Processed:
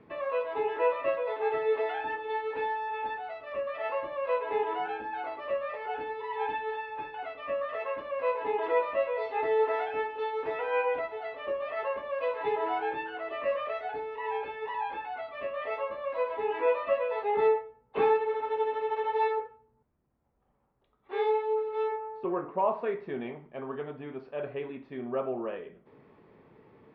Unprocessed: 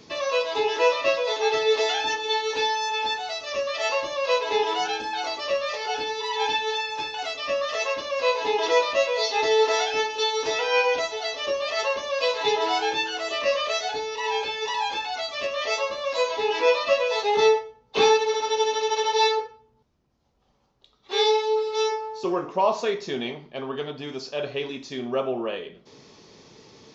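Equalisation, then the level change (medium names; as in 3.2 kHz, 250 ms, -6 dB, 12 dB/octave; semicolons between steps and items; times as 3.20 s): low-pass 2.1 kHz 24 dB/octave; distance through air 54 m; -5.5 dB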